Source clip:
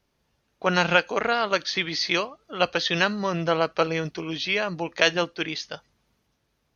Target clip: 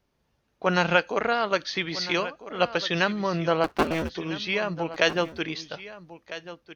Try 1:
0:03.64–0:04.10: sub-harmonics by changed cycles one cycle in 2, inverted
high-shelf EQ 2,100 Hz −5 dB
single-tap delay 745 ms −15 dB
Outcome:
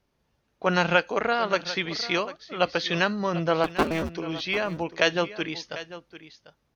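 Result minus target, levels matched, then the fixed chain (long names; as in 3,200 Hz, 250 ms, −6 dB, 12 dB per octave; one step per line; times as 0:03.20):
echo 556 ms early
0:03.64–0:04.10: sub-harmonics by changed cycles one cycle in 2, inverted
high-shelf EQ 2,100 Hz −5 dB
single-tap delay 1,301 ms −15 dB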